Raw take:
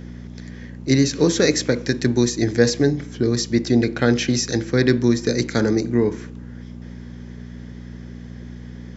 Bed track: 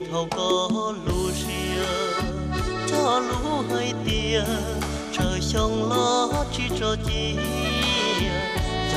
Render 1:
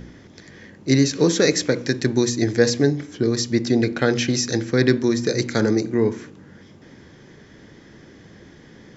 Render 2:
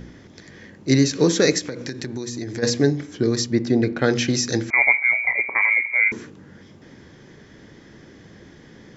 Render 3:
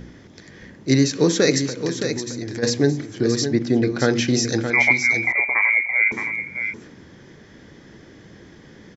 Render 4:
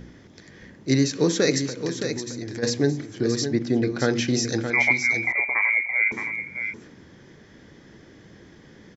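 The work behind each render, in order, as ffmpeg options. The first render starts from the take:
-af "bandreject=f=60:t=h:w=4,bandreject=f=120:t=h:w=4,bandreject=f=180:t=h:w=4,bandreject=f=240:t=h:w=4,bandreject=f=300:t=h:w=4"
-filter_complex "[0:a]asplit=3[s0][s1][s2];[s0]afade=t=out:st=1.58:d=0.02[s3];[s1]acompressor=threshold=0.0501:ratio=6:attack=3.2:release=140:knee=1:detection=peak,afade=t=in:st=1.58:d=0.02,afade=t=out:st=2.62:d=0.02[s4];[s2]afade=t=in:st=2.62:d=0.02[s5];[s3][s4][s5]amix=inputs=3:normalize=0,asettb=1/sr,asplit=3[s6][s7][s8];[s6]atrim=end=3.464[s9];[s7]atrim=start=3.46:end=4.04,asetpts=PTS-STARTPTS,afade=t=in:d=0.004:c=qsin,afade=t=out:st=0.576:d=0.004:c=qsin,highshelf=f=3200:g=-10.5[s10];[s8]atrim=start=4.036[s11];[s9][s10]acrossfade=d=0.004:c1=hsin:c2=qsin[s12];[s12][s11]acrossfade=d=0.004:c1=qsin:c2=hsin,asettb=1/sr,asplit=3[s13][s14][s15];[s13]atrim=end=4.704[s16];[s14]atrim=start=4.7:end=6.12,asetpts=PTS-STARTPTS,afade=t=in:d=0.004:c=qsin,afade=t=out:st=1.416:d=0.004:c=qsin,lowpass=f=2100:t=q:w=0.5098,lowpass=f=2100:t=q:w=0.6013,lowpass=f=2100:t=q:w=0.9,lowpass=f=2100:t=q:w=2.563,afreqshift=-2500[s17];[s15]atrim=start=6.116[s18];[s16][s17]acrossfade=d=0.004:c1=hsin:c2=qsin[s19];[s19][s18]acrossfade=d=0.004:c1=qsin:c2=hsin"
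-af "aecho=1:1:619:0.398"
-af "volume=0.668"

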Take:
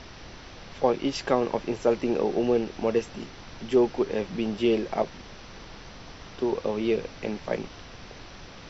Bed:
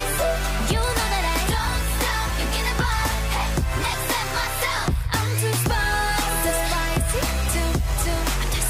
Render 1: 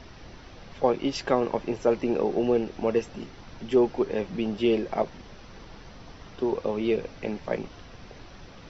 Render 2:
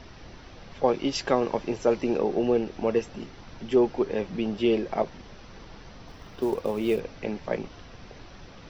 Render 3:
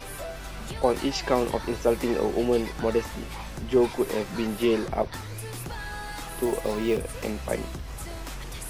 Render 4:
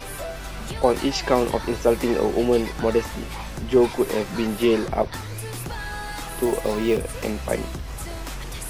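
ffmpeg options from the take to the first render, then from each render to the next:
-af "afftdn=nr=6:nf=-45"
-filter_complex "[0:a]asettb=1/sr,asplit=3[s0][s1][s2];[s0]atrim=end=0.884[s3];[s1]atrim=start=0.88:end=2.18,asetpts=PTS-STARTPTS,afade=t=in:d=0.004:c=qsin,afade=t=out:st=1.296:d=0.004:c=qsin,highshelf=f=5200:g=7[s4];[s2]atrim=start=2.176[s5];[s3][s4]acrossfade=d=0.004:c1=hsin:c2=qsin[s6];[s6][s5]acrossfade=d=0.004:c1=qsin:c2=hsin,asettb=1/sr,asplit=3[s7][s8][s9];[s7]atrim=end=6.084[s10];[s8]atrim=start=6.08:end=7,asetpts=PTS-STARTPTS,afade=t=in:d=0.004:c=qsin,afade=t=out:st=0.916:d=0.004:c=qsin,acrusher=bits=7:mode=log:mix=0:aa=0.000001[s11];[s9]atrim=start=6.996[s12];[s10][s11]acrossfade=d=0.004:c1=hsin:c2=qsin[s13];[s13][s12]acrossfade=d=0.004:c1=qsin:c2=hsin"
-filter_complex "[1:a]volume=0.188[s0];[0:a][s0]amix=inputs=2:normalize=0"
-af "volume=1.58"

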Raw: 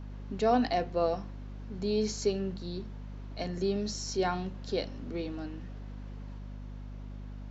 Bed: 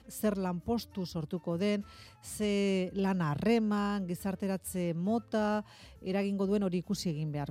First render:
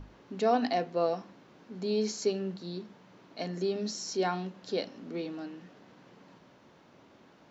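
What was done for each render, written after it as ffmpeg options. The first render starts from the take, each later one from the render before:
-af "bandreject=f=50:t=h:w=6,bandreject=f=100:t=h:w=6,bandreject=f=150:t=h:w=6,bandreject=f=200:t=h:w=6,bandreject=f=250:t=h:w=6"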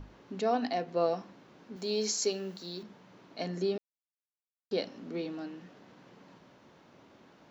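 -filter_complex "[0:a]asettb=1/sr,asplit=3[s0][s1][s2];[s0]atrim=end=1.764[s3];[s1]atrim=start=1.76:end=2.83,asetpts=PTS-STARTPTS,afade=t=in:d=0.004:c=qsin,afade=t=out:st=1.066:d=0.004:c=qsin,aemphasis=mode=production:type=bsi[s4];[s2]atrim=start=2.826[s5];[s3][s4]acrossfade=d=0.004:c1=hsin:c2=qsin[s6];[s6][s5]acrossfade=d=0.004:c1=qsin:c2=hsin,asplit=5[s7][s8][s9][s10][s11];[s7]atrim=end=0.412[s12];[s8]atrim=start=0.408:end=0.882,asetpts=PTS-STARTPTS,volume=0.708[s13];[s9]atrim=start=0.878:end=3.78,asetpts=PTS-STARTPTS,afade=t=out:st=2.898:d=0.004:c=hsin[s14];[s10]atrim=start=3.78:end=4.71,asetpts=PTS-STARTPTS,volume=0[s15];[s11]atrim=start=4.71,asetpts=PTS-STARTPTS,afade=t=in:d=0.004:c=hsin[s16];[s12][s13]acrossfade=d=0.004:c1=hsin:c2=hsin[s17];[s14][s15][s16]concat=n=3:v=0:a=1[s18];[s17][s18]acrossfade=d=0.004:c1=hsin:c2=hsin"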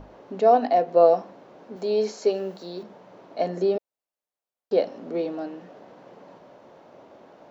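-filter_complex "[0:a]acrossover=split=3600[s0][s1];[s1]acompressor=threshold=0.00447:ratio=4:attack=1:release=60[s2];[s0][s2]amix=inputs=2:normalize=0,equalizer=f=610:w=0.85:g=14.5"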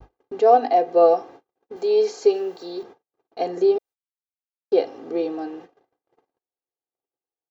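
-af "aecho=1:1:2.5:0.85,agate=range=0.00251:threshold=0.00891:ratio=16:detection=peak"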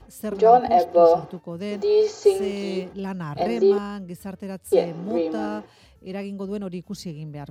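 -filter_complex "[1:a]volume=1[s0];[0:a][s0]amix=inputs=2:normalize=0"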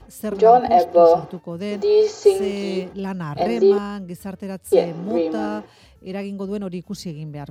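-af "volume=1.41,alimiter=limit=0.708:level=0:latency=1"

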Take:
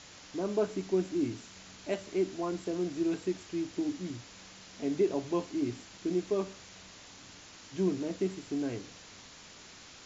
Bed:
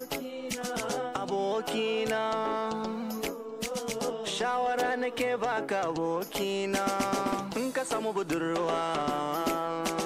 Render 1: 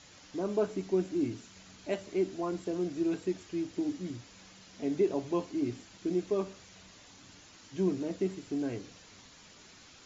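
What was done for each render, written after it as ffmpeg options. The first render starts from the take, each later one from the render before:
-af "afftdn=nr=6:nf=-52"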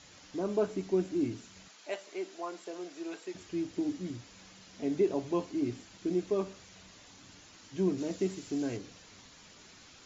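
-filter_complex "[0:a]asettb=1/sr,asplit=3[s0][s1][s2];[s0]atrim=end=1.684[s3];[s1]atrim=start=1.68:end=3.35,asetpts=PTS-STARTPTS,afade=t=in:d=0.004:c=qsin,afade=t=out:st=1.666:d=0.004:c=qsin,highpass=580[s4];[s2]atrim=start=3.346[s5];[s3][s4]acrossfade=d=0.004:c1=hsin:c2=qsin[s6];[s6][s5]acrossfade=d=0.004:c1=qsin:c2=hsin,asettb=1/sr,asplit=3[s7][s8][s9];[s7]atrim=end=7.984[s10];[s8]atrim=start=7.98:end=8.77,asetpts=PTS-STARTPTS,afade=t=in:d=0.004:c=qsin,afade=t=out:st=0.786:d=0.004:c=qsin,highshelf=f=4900:g=10[s11];[s9]atrim=start=8.766[s12];[s10][s11]acrossfade=d=0.004:c1=hsin:c2=qsin[s13];[s13][s12]acrossfade=d=0.004:c1=qsin:c2=hsin"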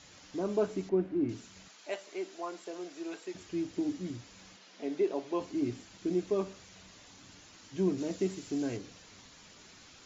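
-filter_complex "[0:a]asettb=1/sr,asplit=3[s0][s1][s2];[s0]atrim=end=0.894[s3];[s1]atrim=start=0.89:end=1.29,asetpts=PTS-STARTPTS,afade=t=in:d=0.004:c=qsin,afade=t=out:st=0.396:d=0.004:c=qsin,lowpass=1800[s4];[s2]atrim=start=1.286[s5];[s3][s4]acrossfade=d=0.004:c1=hsin:c2=qsin[s6];[s6][s5]acrossfade=d=0.004:c1=qsin:c2=hsin,asettb=1/sr,asplit=3[s7][s8][s9];[s7]atrim=end=4.564[s10];[s8]atrim=start=4.56:end=5.41,asetpts=PTS-STARTPTS,afade=t=in:d=0.004:c=qsin,afade=t=out:st=0.846:d=0.004:c=qsin,highpass=330,lowpass=5700[s11];[s9]atrim=start=5.406[s12];[s10][s11]acrossfade=d=0.004:c1=hsin:c2=qsin[s13];[s13][s12]acrossfade=d=0.004:c1=qsin:c2=hsin"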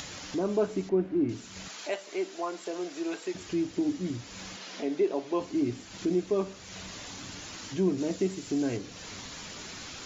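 -filter_complex "[0:a]asplit=2[s0][s1];[s1]alimiter=level_in=2:limit=0.0631:level=0:latency=1:release=368,volume=0.501,volume=1.19[s2];[s0][s2]amix=inputs=2:normalize=0,acompressor=mode=upward:threshold=0.02:ratio=2.5"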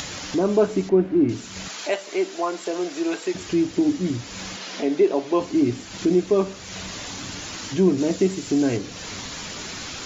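-af "volume=2.66"

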